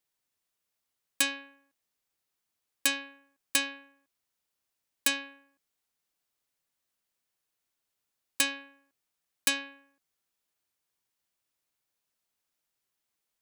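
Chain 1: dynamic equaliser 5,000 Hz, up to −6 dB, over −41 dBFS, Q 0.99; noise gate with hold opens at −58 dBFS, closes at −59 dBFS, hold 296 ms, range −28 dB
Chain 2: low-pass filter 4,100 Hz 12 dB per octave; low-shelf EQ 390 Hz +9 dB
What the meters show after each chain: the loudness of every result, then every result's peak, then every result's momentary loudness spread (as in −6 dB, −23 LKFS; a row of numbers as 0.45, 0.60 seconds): −32.0, −33.0 LKFS; −10.5, −15.0 dBFS; 17, 14 LU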